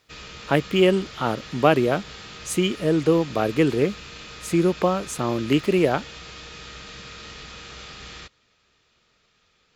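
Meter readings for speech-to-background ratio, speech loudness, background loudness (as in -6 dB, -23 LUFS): 16.5 dB, -22.5 LUFS, -39.0 LUFS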